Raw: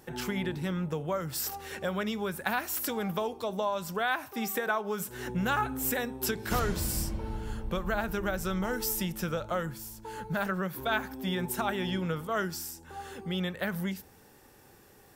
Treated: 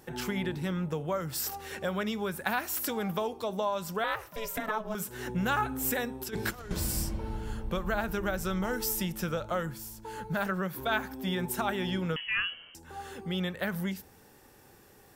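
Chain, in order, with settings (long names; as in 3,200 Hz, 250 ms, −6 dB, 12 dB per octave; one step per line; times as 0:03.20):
0:04.04–0:04.95: ring modulation 220 Hz
0:06.22–0:06.71: compressor whose output falls as the input rises −35 dBFS, ratio −0.5
0:12.16–0:12.75: voice inversion scrambler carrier 3,100 Hz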